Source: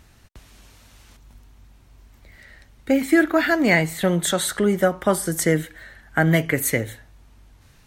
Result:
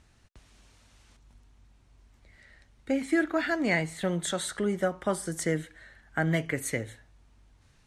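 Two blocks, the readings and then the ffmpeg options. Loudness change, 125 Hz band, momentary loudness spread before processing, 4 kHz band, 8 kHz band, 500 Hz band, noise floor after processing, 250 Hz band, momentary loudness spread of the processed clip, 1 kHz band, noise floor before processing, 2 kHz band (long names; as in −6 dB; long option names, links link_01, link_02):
−9.0 dB, −9.0 dB, 7 LU, −9.0 dB, −10.0 dB, −9.0 dB, −62 dBFS, −9.0 dB, 7 LU, −9.0 dB, −53 dBFS, −9.0 dB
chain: -af "lowpass=frequency=10000:width=0.5412,lowpass=frequency=10000:width=1.3066,volume=-9dB"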